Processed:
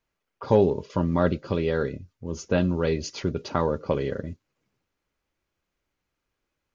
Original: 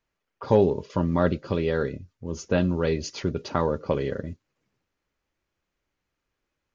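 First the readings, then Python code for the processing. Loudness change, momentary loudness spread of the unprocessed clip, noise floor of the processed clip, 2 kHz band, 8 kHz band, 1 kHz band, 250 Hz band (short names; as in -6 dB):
0.0 dB, 15 LU, -82 dBFS, -0.5 dB, n/a, 0.0 dB, 0.0 dB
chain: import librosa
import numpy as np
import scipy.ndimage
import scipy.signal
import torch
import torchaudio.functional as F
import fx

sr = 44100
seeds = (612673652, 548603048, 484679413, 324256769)

y = fx.notch(x, sr, hz=1800.0, q=24.0)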